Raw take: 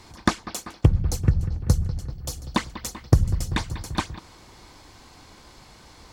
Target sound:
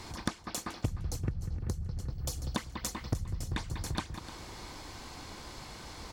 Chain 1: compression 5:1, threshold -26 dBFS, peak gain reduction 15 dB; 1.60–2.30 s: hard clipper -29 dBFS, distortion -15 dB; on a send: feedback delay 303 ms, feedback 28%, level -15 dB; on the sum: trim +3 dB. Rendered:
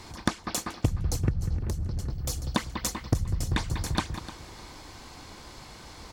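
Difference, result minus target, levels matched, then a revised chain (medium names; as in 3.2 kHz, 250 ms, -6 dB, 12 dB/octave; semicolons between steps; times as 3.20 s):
compression: peak gain reduction -7.5 dB
compression 5:1, threshold -35.5 dBFS, peak gain reduction 22.5 dB; 1.60–2.30 s: hard clipper -29 dBFS, distortion -26 dB; on a send: feedback delay 303 ms, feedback 28%, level -15 dB; on the sum: trim +3 dB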